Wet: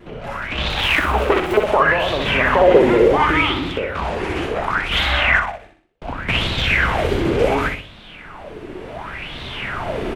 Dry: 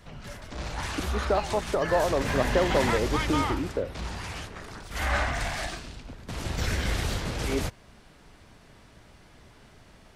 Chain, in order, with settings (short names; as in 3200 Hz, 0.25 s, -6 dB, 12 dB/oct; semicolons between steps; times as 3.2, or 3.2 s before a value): 0.7–1.57 self-modulated delay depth 0.92 ms; recorder AGC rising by 7.5 dB/s; notches 50/100 Hz; 5.39–6.02 gate -25 dBFS, range -46 dB; bell 1800 Hz -2.5 dB 0.27 oct; compressor, threshold -23 dBFS, peak gain reduction 5.5 dB; resonant high shelf 3700 Hz -9 dB, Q 1.5; wow and flutter 64 cents; feedback echo 62 ms, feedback 44%, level -5 dB; LFO bell 0.69 Hz 340–3800 Hz +18 dB; gain +5 dB